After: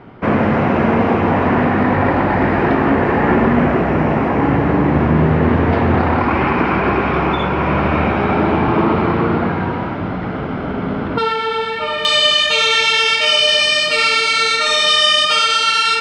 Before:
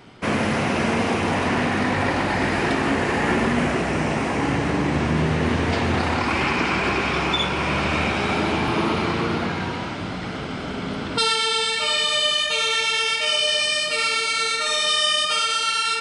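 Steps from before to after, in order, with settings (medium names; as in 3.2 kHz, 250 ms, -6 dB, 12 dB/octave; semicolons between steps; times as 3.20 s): low-pass 1.5 kHz 12 dB/octave, from 12.05 s 5.6 kHz; trim +8 dB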